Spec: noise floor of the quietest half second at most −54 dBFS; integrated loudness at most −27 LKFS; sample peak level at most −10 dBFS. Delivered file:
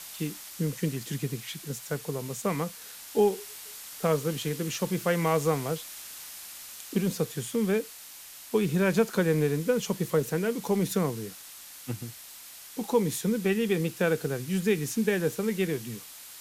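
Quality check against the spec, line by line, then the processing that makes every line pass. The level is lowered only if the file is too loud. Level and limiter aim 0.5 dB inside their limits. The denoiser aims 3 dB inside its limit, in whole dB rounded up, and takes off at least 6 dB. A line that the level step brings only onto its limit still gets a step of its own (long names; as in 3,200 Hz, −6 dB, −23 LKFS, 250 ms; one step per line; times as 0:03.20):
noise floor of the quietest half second −46 dBFS: out of spec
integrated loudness −29.0 LKFS: in spec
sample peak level −12.5 dBFS: in spec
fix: broadband denoise 11 dB, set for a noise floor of −46 dBFS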